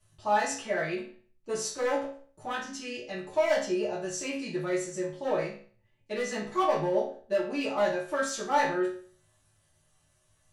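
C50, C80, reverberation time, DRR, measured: 6.0 dB, 10.0 dB, 0.45 s, −10.0 dB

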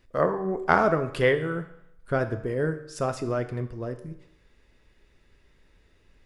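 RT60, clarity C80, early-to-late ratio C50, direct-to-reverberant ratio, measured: 0.80 s, 14.5 dB, 12.0 dB, 8.5 dB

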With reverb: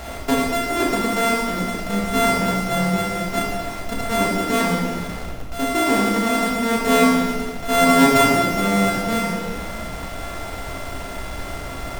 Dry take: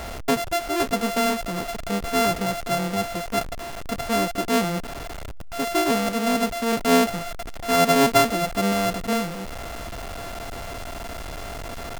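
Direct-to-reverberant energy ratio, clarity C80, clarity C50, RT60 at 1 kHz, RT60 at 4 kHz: −2.5 dB, 3.0 dB, 0.0 dB, 1.4 s, 1.2 s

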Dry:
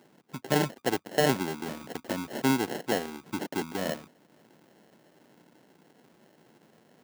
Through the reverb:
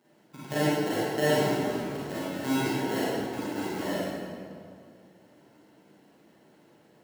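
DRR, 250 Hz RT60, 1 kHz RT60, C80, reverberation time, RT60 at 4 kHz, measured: −10.5 dB, 2.6 s, 2.1 s, −2.5 dB, 2.2 s, 1.5 s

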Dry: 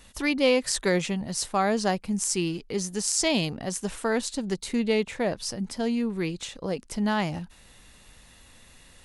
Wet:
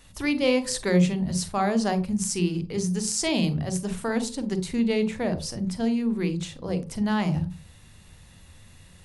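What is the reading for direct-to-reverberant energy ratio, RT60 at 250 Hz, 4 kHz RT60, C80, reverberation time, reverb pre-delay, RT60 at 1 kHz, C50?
10.0 dB, 0.40 s, 0.30 s, 20.0 dB, 0.40 s, 36 ms, 0.40 s, 13.5 dB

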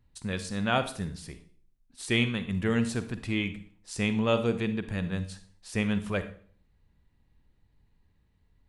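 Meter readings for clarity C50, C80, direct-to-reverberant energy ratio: 12.0 dB, 16.0 dB, 10.5 dB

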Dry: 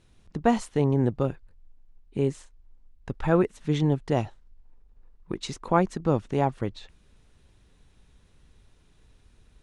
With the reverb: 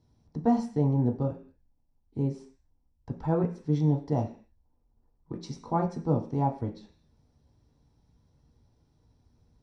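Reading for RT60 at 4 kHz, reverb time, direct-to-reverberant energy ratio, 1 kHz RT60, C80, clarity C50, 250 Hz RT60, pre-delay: can't be measured, 0.45 s, 1.5 dB, 0.45 s, 15.5 dB, 10.5 dB, 0.55 s, 6 ms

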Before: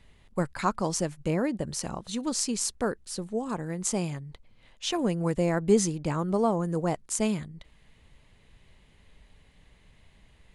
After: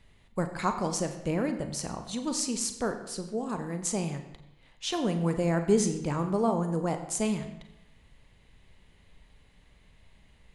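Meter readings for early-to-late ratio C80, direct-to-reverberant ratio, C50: 10.5 dB, 6.5 dB, 9.0 dB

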